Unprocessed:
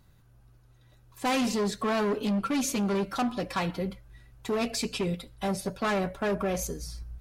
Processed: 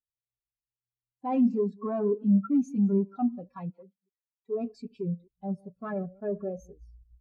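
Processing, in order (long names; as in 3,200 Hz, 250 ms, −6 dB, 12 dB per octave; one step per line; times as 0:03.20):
delay that plays each chunk backwards 132 ms, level −11 dB
0:03.70–0:04.54: high-pass filter 570 Hz → 260 Hz 6 dB per octave
every bin expanded away from the loudest bin 2.5 to 1
level +4 dB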